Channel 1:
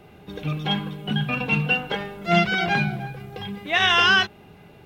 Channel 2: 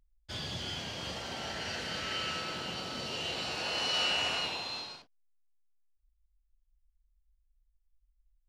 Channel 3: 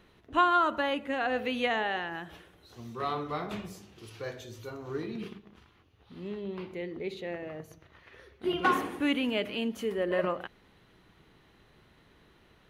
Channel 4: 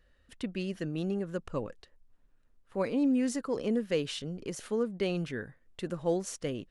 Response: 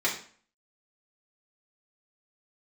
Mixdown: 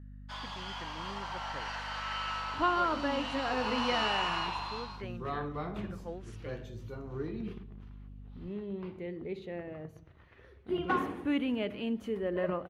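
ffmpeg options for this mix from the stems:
-filter_complex "[1:a]highpass=f=990:t=q:w=4.4,aeval=exprs='val(0)+0.00562*(sin(2*PI*50*n/s)+sin(2*PI*2*50*n/s)/2+sin(2*PI*3*50*n/s)/3+sin(2*PI*4*50*n/s)/4+sin(2*PI*5*50*n/s)/5)':c=same,volume=0.841[s0];[2:a]lowshelf=f=190:g=9.5,adelay=2250,volume=0.596[s1];[3:a]equalizer=f=1600:t=o:w=1.6:g=14,volume=0.168[s2];[s0][s1][s2]amix=inputs=3:normalize=0,highshelf=f=3600:g=-10.5"

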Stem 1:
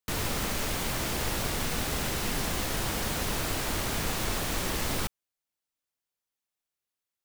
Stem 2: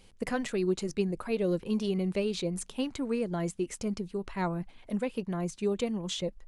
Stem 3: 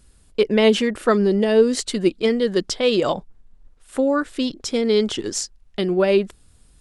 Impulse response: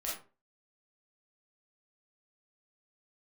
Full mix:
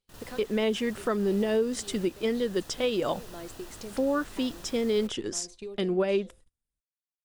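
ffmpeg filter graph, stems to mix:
-filter_complex "[0:a]bandreject=f=2200:w=5.4,volume=0.133,asplit=2[s0][s1];[s1]volume=0.158[s2];[1:a]equalizer=f=160:t=o:w=0.67:g=-11,equalizer=f=400:t=o:w=0.67:g=4,equalizer=f=4000:t=o:w=0.67:g=9,acompressor=threshold=0.0112:ratio=4,volume=0.891,asplit=2[s3][s4];[s4]volume=0.119[s5];[2:a]bandreject=f=4300:w=6.2,volume=0.473,asplit=2[s6][s7];[s7]apad=whole_len=285637[s8];[s3][s8]sidechaincompress=threshold=0.0158:ratio=5:attack=8.4:release=263[s9];[3:a]atrim=start_sample=2205[s10];[s2][s5]amix=inputs=2:normalize=0[s11];[s11][s10]afir=irnorm=-1:irlink=0[s12];[s0][s9][s6][s12]amix=inputs=4:normalize=0,agate=range=0.0316:threshold=0.00501:ratio=16:detection=peak,alimiter=limit=0.133:level=0:latency=1:release=296"

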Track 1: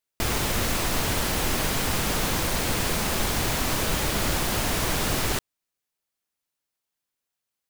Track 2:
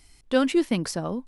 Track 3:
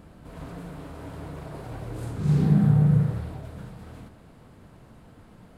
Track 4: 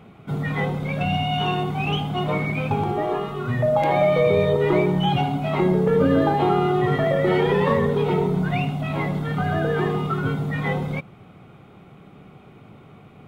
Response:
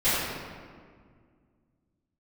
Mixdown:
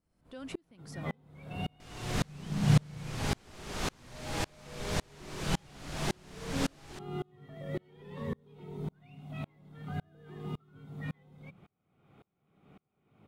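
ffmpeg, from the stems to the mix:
-filter_complex "[0:a]lowpass=7700,adelay=1600,volume=0.631[s0];[1:a]acompressor=threshold=0.0316:ratio=3,volume=0.631,asplit=2[s1][s2];[2:a]volume=0.891[s3];[3:a]bandreject=f=60:t=h:w=6,bandreject=f=120:t=h:w=6,bandreject=f=180:t=h:w=6,acrossover=split=300|3000[s4][s5][s6];[s5]acompressor=threshold=0.0141:ratio=2[s7];[s4][s7][s6]amix=inputs=3:normalize=0,adelay=500,volume=0.398[s8];[s2]apad=whole_len=250311[s9];[s3][s9]sidechaincompress=threshold=0.00562:ratio=8:attack=16:release=139[s10];[s0][s1][s10][s8]amix=inputs=4:normalize=0,aeval=exprs='val(0)*pow(10,-35*if(lt(mod(-1.8*n/s,1),2*abs(-1.8)/1000),1-mod(-1.8*n/s,1)/(2*abs(-1.8)/1000),(mod(-1.8*n/s,1)-2*abs(-1.8)/1000)/(1-2*abs(-1.8)/1000))/20)':c=same"

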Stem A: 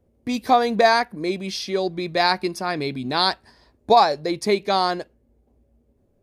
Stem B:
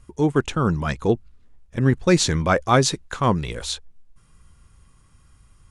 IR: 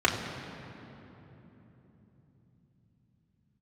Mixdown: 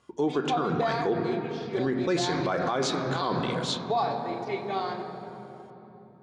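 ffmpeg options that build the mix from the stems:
-filter_complex "[0:a]aeval=exprs='sgn(val(0))*max(abs(val(0))-0.0112,0)':c=same,volume=0.224,asplit=2[s0][s1];[s1]volume=0.251[s2];[1:a]volume=0.794,asplit=3[s3][s4][s5];[s4]volume=0.126[s6];[s5]apad=whole_len=274621[s7];[s0][s7]sidechaingate=range=0.0224:threshold=0.00562:ratio=16:detection=peak[s8];[2:a]atrim=start_sample=2205[s9];[s2][s6]amix=inputs=2:normalize=0[s10];[s10][s9]afir=irnorm=-1:irlink=0[s11];[s8][s3][s11]amix=inputs=3:normalize=0,highpass=260,lowpass=5100,alimiter=limit=0.126:level=0:latency=1:release=51"

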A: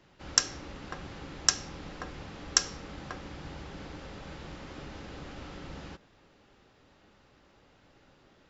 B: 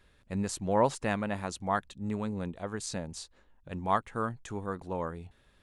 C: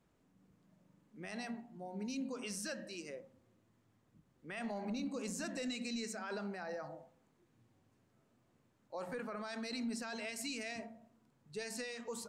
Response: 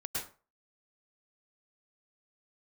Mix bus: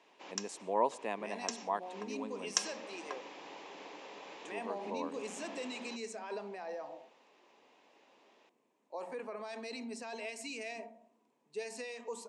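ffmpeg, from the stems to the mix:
-filter_complex "[0:a]lowshelf=f=370:g=-10.5,volume=0.75[s0];[1:a]volume=0.335,asplit=3[s1][s2][s3];[s1]atrim=end=2.58,asetpts=PTS-STARTPTS,afade=t=out:st=2.576:d=0.004:c=hsin[s4];[s2]atrim=start=2.58:end=4.42,asetpts=PTS-STARTPTS,volume=0[s5];[s3]atrim=start=4.42,asetpts=PTS-STARTPTS,afade=t=in:d=0.004:c=hsin[s6];[s4][s5][s6]concat=n=3:v=0:a=1,asplit=3[s7][s8][s9];[s8]volume=0.0668[s10];[2:a]volume=0.794[s11];[s9]apad=whole_len=374483[s12];[s0][s12]sidechaincompress=threshold=0.00282:ratio=10:attack=16:release=173[s13];[3:a]atrim=start_sample=2205[s14];[s10][s14]afir=irnorm=-1:irlink=0[s15];[s13][s7][s11][s15]amix=inputs=4:normalize=0,highpass=f=240:w=0.5412,highpass=f=240:w=1.3066,equalizer=f=430:t=q:w=4:g=6,equalizer=f=680:t=q:w=4:g=4,equalizer=f=980:t=q:w=4:g=8,equalizer=f=1400:t=q:w=4:g=-9,equalizer=f=2500:t=q:w=4:g=5,equalizer=f=4600:t=q:w=4:g=-3,lowpass=f=9700:w=0.5412,lowpass=f=9700:w=1.3066"

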